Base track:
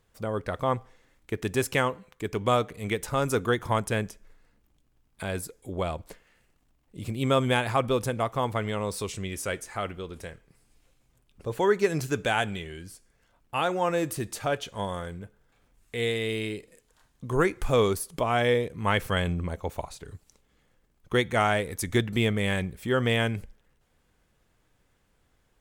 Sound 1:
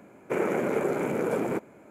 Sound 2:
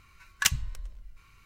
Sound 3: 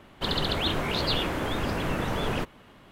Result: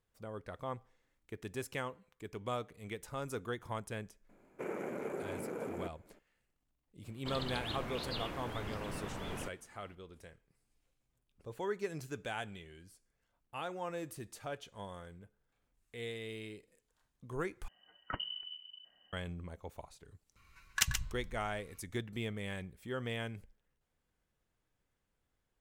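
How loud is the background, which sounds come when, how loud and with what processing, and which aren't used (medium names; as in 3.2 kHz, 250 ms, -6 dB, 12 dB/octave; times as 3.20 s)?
base track -14.5 dB
4.29 s: add 1 -13.5 dB
7.04 s: add 3 -14 dB
17.68 s: replace with 2 -12 dB + frequency inversion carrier 3 kHz
20.36 s: add 2 -6.5 dB + delay 130 ms -7.5 dB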